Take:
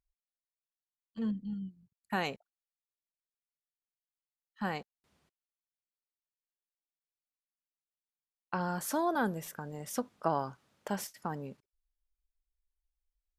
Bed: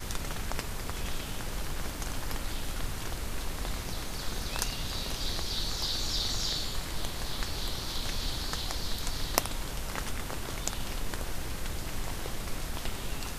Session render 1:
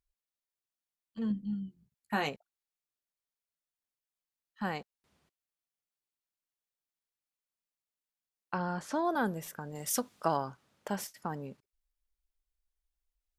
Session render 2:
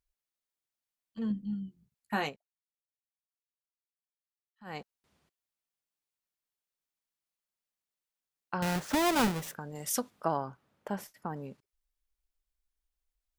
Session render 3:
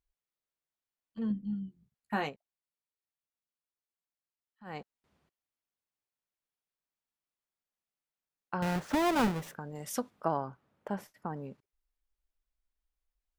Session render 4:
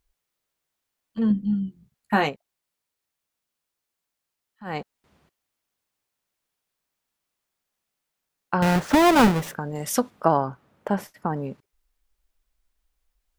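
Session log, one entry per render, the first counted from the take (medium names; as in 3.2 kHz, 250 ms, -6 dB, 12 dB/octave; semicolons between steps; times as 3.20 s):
1.29–2.29 s: doubling 14 ms -5 dB; 8.58–9.05 s: distance through air 92 m; 9.75–10.37 s: treble shelf 2.6 kHz +10.5 dB
2.24–4.79 s: dip -18 dB, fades 0.14 s; 8.62–9.55 s: square wave that keeps the level; 10.10–11.36 s: peaking EQ 6.5 kHz -9.5 dB 2.5 oct
treble shelf 3.3 kHz -9 dB
trim +11.5 dB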